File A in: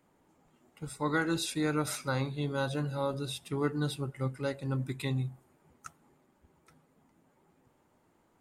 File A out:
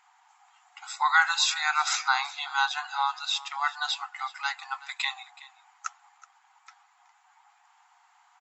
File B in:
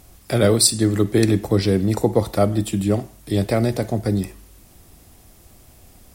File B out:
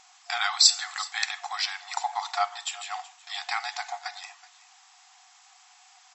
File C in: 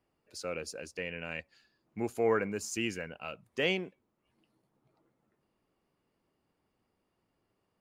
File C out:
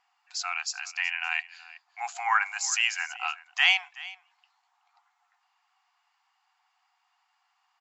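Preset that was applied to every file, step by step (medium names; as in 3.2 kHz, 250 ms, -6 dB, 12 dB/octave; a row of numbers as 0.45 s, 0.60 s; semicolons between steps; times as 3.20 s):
delay 374 ms -19 dB; FFT band-pass 710–7800 Hz; normalise loudness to -27 LUFS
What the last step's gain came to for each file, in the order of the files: +12.5 dB, +2.0 dB, +12.0 dB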